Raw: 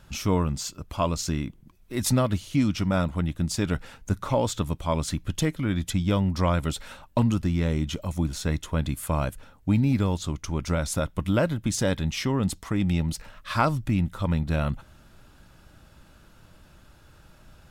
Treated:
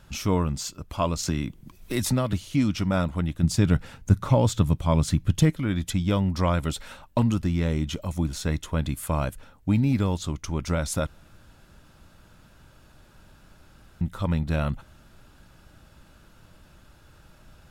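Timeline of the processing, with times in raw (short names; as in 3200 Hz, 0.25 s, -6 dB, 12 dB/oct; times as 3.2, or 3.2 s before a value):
1.23–2.33 three-band squash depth 70%
3.43–5.5 bell 120 Hz +9 dB 1.8 oct
11.07–14.01 room tone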